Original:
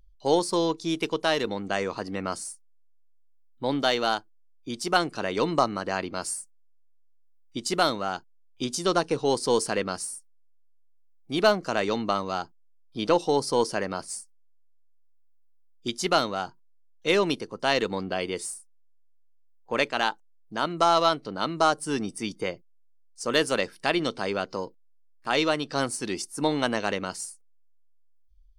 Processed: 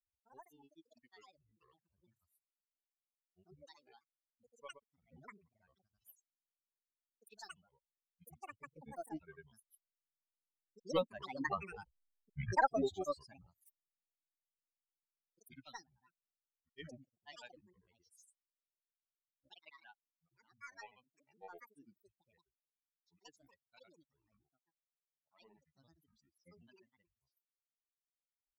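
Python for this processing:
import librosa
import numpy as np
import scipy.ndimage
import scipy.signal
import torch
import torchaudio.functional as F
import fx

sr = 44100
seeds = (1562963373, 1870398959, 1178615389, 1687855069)

y = fx.bin_expand(x, sr, power=3.0)
y = fx.doppler_pass(y, sr, speed_mps=16, closest_m=3.2, pass_at_s=11.94)
y = fx.granulator(y, sr, seeds[0], grain_ms=100.0, per_s=20.0, spray_ms=100.0, spread_st=12)
y = F.gain(torch.from_numpy(y), 7.5).numpy()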